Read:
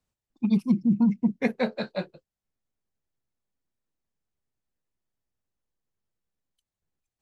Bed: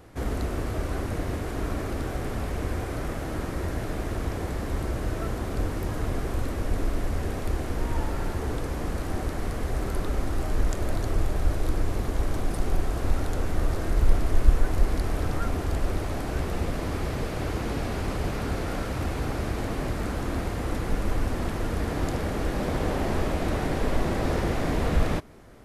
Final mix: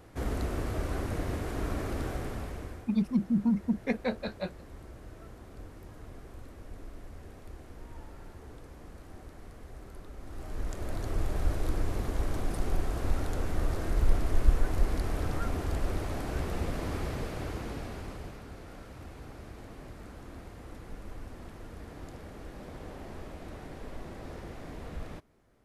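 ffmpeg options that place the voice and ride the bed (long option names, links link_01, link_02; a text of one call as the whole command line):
ffmpeg -i stem1.wav -i stem2.wav -filter_complex "[0:a]adelay=2450,volume=-5dB[link_01];[1:a]volume=10.5dB,afade=type=out:start_time=2.06:duration=0.81:silence=0.177828,afade=type=in:start_time=10.18:duration=1.22:silence=0.199526,afade=type=out:start_time=16.96:duration=1.48:silence=0.237137[link_02];[link_01][link_02]amix=inputs=2:normalize=0" out.wav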